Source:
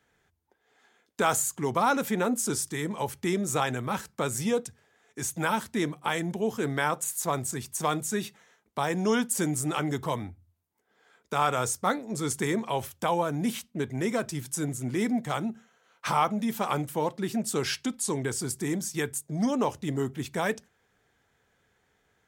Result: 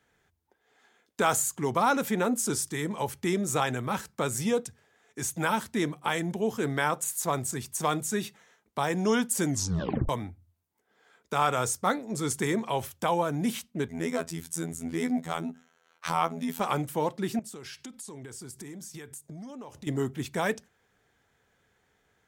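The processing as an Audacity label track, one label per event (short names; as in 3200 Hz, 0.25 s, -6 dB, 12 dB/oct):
9.470000	9.470000	tape stop 0.62 s
13.880000	16.600000	robotiser 82.9 Hz
17.390000	19.870000	compressor 10:1, threshold -39 dBFS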